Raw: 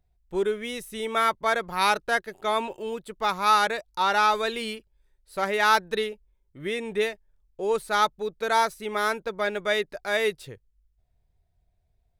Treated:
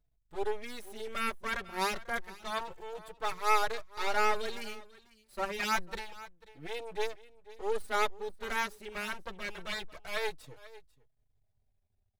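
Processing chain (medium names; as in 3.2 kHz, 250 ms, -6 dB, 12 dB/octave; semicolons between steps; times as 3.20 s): half-wave rectifier; delay 493 ms -19.5 dB; endless flanger 4.2 ms -0.28 Hz; trim -2 dB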